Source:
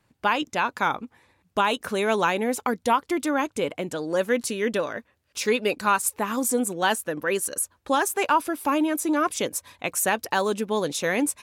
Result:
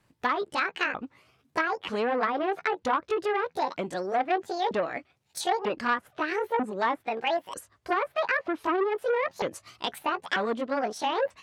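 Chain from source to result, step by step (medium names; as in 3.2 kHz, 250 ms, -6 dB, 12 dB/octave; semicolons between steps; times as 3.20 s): sawtooth pitch modulation +11.5 st, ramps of 942 ms; low-pass that closes with the level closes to 1.3 kHz, closed at -19.5 dBFS; transformer saturation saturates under 1.2 kHz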